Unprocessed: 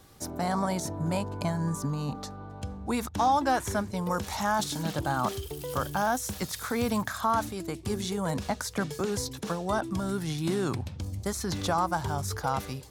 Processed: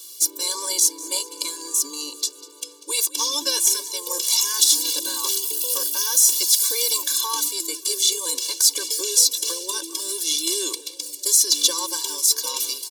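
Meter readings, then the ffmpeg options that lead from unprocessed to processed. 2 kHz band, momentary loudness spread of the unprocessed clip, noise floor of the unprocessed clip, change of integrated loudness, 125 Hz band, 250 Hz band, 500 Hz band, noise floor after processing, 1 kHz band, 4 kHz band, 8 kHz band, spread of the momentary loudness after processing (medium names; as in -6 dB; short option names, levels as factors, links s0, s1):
-1.5 dB, 7 LU, -43 dBFS, +11.0 dB, under -40 dB, -9.5 dB, -3.5 dB, -43 dBFS, -7.0 dB, +18.5 dB, +21.5 dB, 11 LU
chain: -filter_complex "[0:a]asplit=6[s0][s1][s2][s3][s4][s5];[s1]adelay=195,afreqshift=67,volume=0.1[s6];[s2]adelay=390,afreqshift=134,volume=0.0603[s7];[s3]adelay=585,afreqshift=201,volume=0.0359[s8];[s4]adelay=780,afreqshift=268,volume=0.0216[s9];[s5]adelay=975,afreqshift=335,volume=0.013[s10];[s0][s6][s7][s8][s9][s10]amix=inputs=6:normalize=0,aexciter=amount=7.9:drive=9.4:freq=2800,afftfilt=real='re*eq(mod(floor(b*sr/1024/300),2),1)':imag='im*eq(mod(floor(b*sr/1024/300),2),1)':win_size=1024:overlap=0.75,volume=0.841"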